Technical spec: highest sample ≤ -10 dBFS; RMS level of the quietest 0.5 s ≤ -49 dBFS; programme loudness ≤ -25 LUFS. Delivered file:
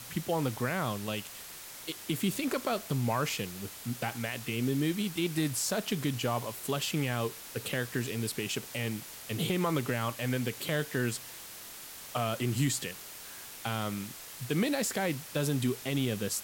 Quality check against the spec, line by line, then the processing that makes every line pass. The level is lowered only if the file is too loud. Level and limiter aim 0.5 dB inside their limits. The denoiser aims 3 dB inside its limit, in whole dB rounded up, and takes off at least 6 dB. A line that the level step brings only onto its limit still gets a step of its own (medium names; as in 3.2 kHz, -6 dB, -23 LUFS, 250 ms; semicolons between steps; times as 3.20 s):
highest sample -17.5 dBFS: pass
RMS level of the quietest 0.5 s -46 dBFS: fail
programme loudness -32.5 LUFS: pass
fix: noise reduction 6 dB, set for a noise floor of -46 dBFS